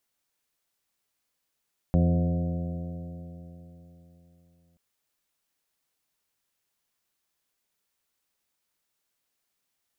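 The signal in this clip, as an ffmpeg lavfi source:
-f lavfi -i "aevalsrc='0.0841*pow(10,-3*t/3.7)*sin(2*PI*84.11*t)+0.1*pow(10,-3*t/3.7)*sin(2*PI*168.87*t)+0.0335*pow(10,-3*t/3.7)*sin(2*PI*254.93*t)+0.0188*pow(10,-3*t/3.7)*sin(2*PI*342.92*t)+0.00944*pow(10,-3*t/3.7)*sin(2*PI*433.44*t)+0.0266*pow(10,-3*t/3.7)*sin(2*PI*527.06*t)+0.0133*pow(10,-3*t/3.7)*sin(2*PI*624.33*t)+0.0106*pow(10,-3*t/3.7)*sin(2*PI*725.76*t)':d=2.83:s=44100"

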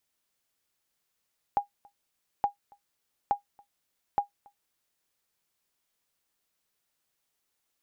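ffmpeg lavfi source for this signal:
-f lavfi -i "aevalsrc='0.158*(sin(2*PI*813*mod(t,0.87))*exp(-6.91*mod(t,0.87)/0.12)+0.0335*sin(2*PI*813*max(mod(t,0.87)-0.28,0))*exp(-6.91*max(mod(t,0.87)-0.28,0)/0.12))':d=3.48:s=44100"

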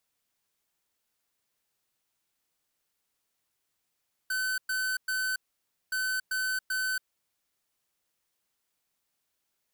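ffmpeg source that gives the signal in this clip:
-f lavfi -i "aevalsrc='0.0316*(2*lt(mod(1520*t,1),0.5)-1)*clip(min(mod(mod(t,1.62),0.39),0.28-mod(mod(t,1.62),0.39))/0.005,0,1)*lt(mod(t,1.62),1.17)':d=3.24:s=44100"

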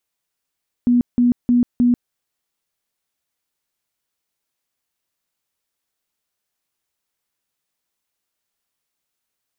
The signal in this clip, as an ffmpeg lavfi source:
-f lavfi -i "aevalsrc='0.282*sin(2*PI*243*mod(t,0.31))*lt(mod(t,0.31),34/243)':d=1.24:s=44100"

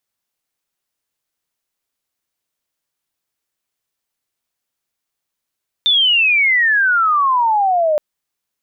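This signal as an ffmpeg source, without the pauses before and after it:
-f lavfi -i "aevalsrc='pow(10,(-10-2*t/2.12)/20)*sin(2*PI*3600*2.12/log(590/3600)*(exp(log(590/3600)*t/2.12)-1))':d=2.12:s=44100"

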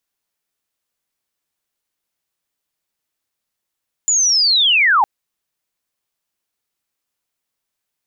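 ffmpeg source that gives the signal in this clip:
-f lavfi -i "aevalsrc='pow(10,(-12+2.5*t/0.96)/20)*sin(2*PI*(7100*t-6330*t*t/(2*0.96)))':d=0.96:s=44100"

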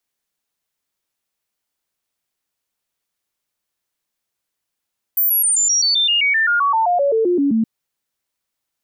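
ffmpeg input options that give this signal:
-f lavfi -i "aevalsrc='0.224*clip(min(mod(t,0.13),0.13-mod(t,0.13))/0.005,0,1)*sin(2*PI*14300*pow(2,-floor(t/0.13)/3)*mod(t,0.13))':d=2.47:s=44100"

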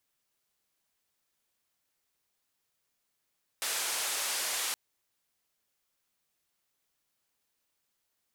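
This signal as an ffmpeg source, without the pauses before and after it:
-f lavfi -i "anoisesrc=c=white:d=1.12:r=44100:seed=1,highpass=f=540,lowpass=f=11000,volume=-25dB"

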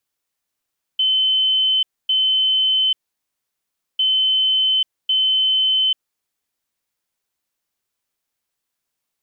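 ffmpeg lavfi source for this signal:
-f lavfi -i "aevalsrc='0.2*sin(2*PI*3060*t)*clip(min(mod(mod(t,3),1.1),0.84-mod(mod(t,3),1.1))/0.005,0,1)*lt(mod(t,3),2.2)':d=6:s=44100"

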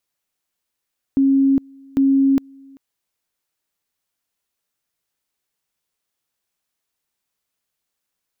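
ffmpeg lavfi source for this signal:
-f lavfi -i "aevalsrc='pow(10,(-11.5-29*gte(mod(t,0.8),0.41))/20)*sin(2*PI*272*t)':d=1.6:s=44100"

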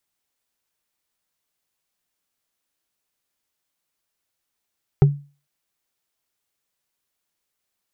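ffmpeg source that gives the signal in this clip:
-f lavfi -i "aevalsrc='0.501*pow(10,-3*t/0.34)*sin(2*PI*143*t)+0.211*pow(10,-3*t/0.101)*sin(2*PI*394.3*t)+0.0891*pow(10,-3*t/0.045)*sin(2*PI*772.8*t)+0.0376*pow(10,-3*t/0.025)*sin(2*PI*1277.4*t)+0.0158*pow(10,-3*t/0.015)*sin(2*PI*1907.6*t)':d=0.45:s=44100"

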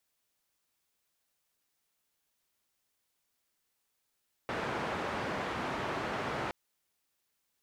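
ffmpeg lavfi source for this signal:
-f lavfi -i "anoisesrc=c=white:d=2.02:r=44100:seed=1,highpass=f=85,lowpass=f=1300,volume=-18.6dB"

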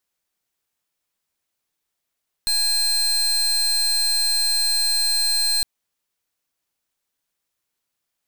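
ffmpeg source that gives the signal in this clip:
-f lavfi -i "aevalsrc='0.1*(2*lt(mod(4160*t,1),0.32)-1)':d=3.16:s=44100"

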